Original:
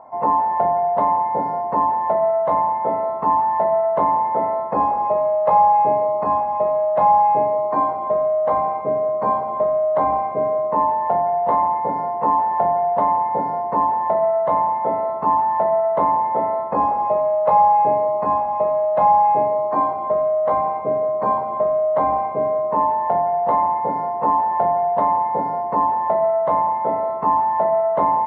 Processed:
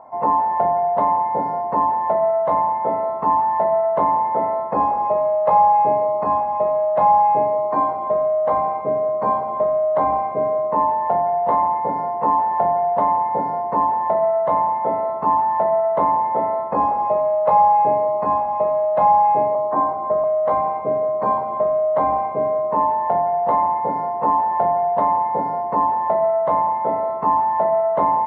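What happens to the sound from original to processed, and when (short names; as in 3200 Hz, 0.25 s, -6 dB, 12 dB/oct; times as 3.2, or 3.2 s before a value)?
19.55–20.24 steep low-pass 2000 Hz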